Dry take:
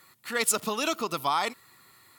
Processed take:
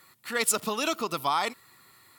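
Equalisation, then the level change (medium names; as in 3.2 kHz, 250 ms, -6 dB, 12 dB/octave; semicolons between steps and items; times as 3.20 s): band-stop 6.5 kHz, Q 30; 0.0 dB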